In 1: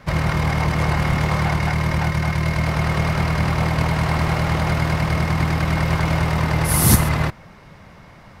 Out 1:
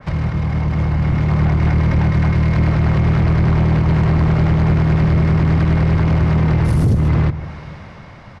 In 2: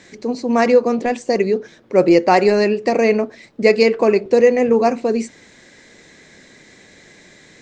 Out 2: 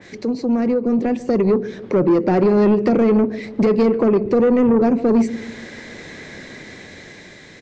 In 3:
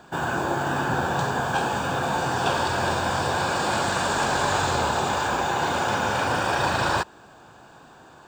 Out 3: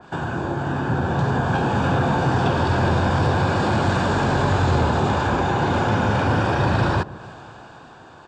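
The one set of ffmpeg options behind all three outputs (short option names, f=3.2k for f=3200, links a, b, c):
-filter_complex "[0:a]acrossover=split=370[a][b];[b]acompressor=threshold=-32dB:ratio=6[c];[a][c]amix=inputs=2:normalize=0,alimiter=limit=-14.5dB:level=0:latency=1:release=92,lowpass=5.5k,dynaudnorm=f=270:g=9:m=7dB,equalizer=f=99:t=o:w=0.6:g=4.5,asplit=2[d][e];[e]adelay=145,lowpass=f=860:p=1,volume=-16.5dB,asplit=2[f][g];[g]adelay=145,lowpass=f=860:p=1,volume=0.52,asplit=2[h][i];[i]adelay=145,lowpass=f=860:p=1,volume=0.52,asplit=2[j][k];[k]adelay=145,lowpass=f=860:p=1,volume=0.52,asplit=2[l][m];[m]adelay=145,lowpass=f=860:p=1,volume=0.52[n];[d][f][h][j][l][n]amix=inputs=6:normalize=0,asoftclip=type=tanh:threshold=-13.5dB,adynamicequalizer=threshold=0.00708:dfrequency=2600:dqfactor=0.7:tfrequency=2600:tqfactor=0.7:attack=5:release=100:ratio=0.375:range=1.5:mode=cutabove:tftype=highshelf,volume=4dB"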